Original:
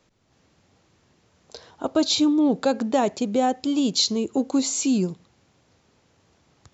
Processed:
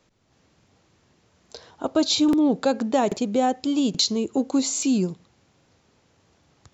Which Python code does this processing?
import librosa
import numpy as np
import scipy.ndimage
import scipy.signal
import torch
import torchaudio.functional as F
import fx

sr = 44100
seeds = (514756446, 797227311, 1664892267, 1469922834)

y = fx.buffer_crackle(x, sr, first_s=0.58, period_s=0.83, block=2048, kind='repeat')